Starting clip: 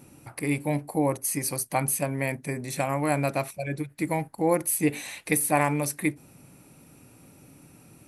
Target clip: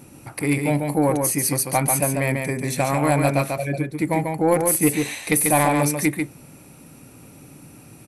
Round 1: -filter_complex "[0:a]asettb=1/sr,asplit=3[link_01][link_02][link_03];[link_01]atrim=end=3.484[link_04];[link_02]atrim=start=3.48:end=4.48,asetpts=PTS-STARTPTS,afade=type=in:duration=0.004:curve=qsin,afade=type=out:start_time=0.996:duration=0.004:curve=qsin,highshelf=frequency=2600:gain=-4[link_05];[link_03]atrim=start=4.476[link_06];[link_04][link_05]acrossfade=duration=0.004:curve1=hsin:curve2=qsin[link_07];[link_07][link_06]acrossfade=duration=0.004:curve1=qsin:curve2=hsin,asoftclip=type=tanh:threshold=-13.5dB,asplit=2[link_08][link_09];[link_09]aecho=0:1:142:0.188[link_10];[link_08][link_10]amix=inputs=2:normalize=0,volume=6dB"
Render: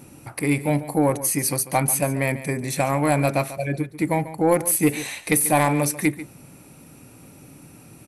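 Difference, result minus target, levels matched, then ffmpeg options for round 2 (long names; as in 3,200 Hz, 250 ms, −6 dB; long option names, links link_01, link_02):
echo-to-direct −10 dB
-filter_complex "[0:a]asettb=1/sr,asplit=3[link_01][link_02][link_03];[link_01]atrim=end=3.484[link_04];[link_02]atrim=start=3.48:end=4.48,asetpts=PTS-STARTPTS,afade=type=in:duration=0.004:curve=qsin,afade=type=out:start_time=0.996:duration=0.004:curve=qsin,highshelf=frequency=2600:gain=-4[link_05];[link_03]atrim=start=4.476[link_06];[link_04][link_05]acrossfade=duration=0.004:curve1=hsin:curve2=qsin[link_07];[link_07][link_06]acrossfade=duration=0.004:curve1=qsin:curve2=hsin,asoftclip=type=tanh:threshold=-13.5dB,asplit=2[link_08][link_09];[link_09]aecho=0:1:142:0.596[link_10];[link_08][link_10]amix=inputs=2:normalize=0,volume=6dB"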